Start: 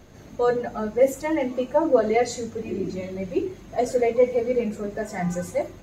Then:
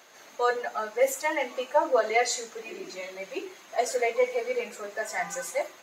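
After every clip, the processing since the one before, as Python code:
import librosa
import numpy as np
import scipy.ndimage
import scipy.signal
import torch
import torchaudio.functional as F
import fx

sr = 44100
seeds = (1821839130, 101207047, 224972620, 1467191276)

y = scipy.signal.sosfilt(scipy.signal.butter(2, 900.0, 'highpass', fs=sr, output='sos'), x)
y = y * 10.0 ** (4.5 / 20.0)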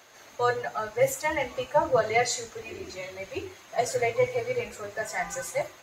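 y = fx.octave_divider(x, sr, octaves=2, level_db=-5.0)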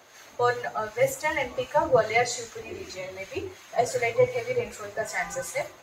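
y = fx.harmonic_tremolo(x, sr, hz=2.6, depth_pct=50, crossover_hz=1100.0)
y = y * 10.0 ** (3.5 / 20.0)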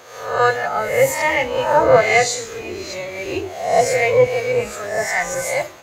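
y = fx.spec_swells(x, sr, rise_s=0.7)
y = y * 10.0 ** (6.5 / 20.0)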